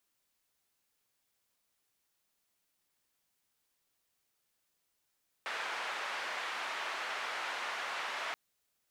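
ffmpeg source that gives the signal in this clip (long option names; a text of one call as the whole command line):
ffmpeg -f lavfi -i "anoisesrc=color=white:duration=2.88:sample_rate=44100:seed=1,highpass=frequency=790,lowpass=frequency=1900,volume=-21.3dB" out.wav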